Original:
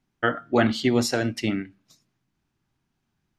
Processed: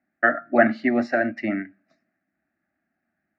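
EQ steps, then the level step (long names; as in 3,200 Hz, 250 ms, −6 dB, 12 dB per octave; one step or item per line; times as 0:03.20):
loudspeaker in its box 130–3,400 Hz, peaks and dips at 130 Hz +6 dB, 640 Hz +9 dB, 1,800 Hz +9 dB
phaser with its sweep stopped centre 660 Hz, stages 8
+1.5 dB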